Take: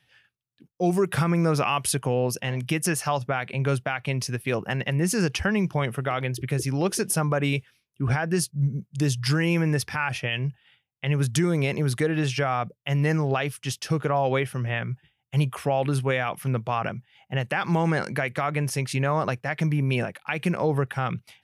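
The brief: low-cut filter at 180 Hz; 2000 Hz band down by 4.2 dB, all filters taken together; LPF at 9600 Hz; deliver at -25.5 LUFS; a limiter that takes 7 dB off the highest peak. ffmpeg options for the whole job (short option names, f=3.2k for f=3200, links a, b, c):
-af "highpass=180,lowpass=9.6k,equalizer=f=2k:t=o:g=-5.5,volume=4.5dB,alimiter=limit=-14dB:level=0:latency=1"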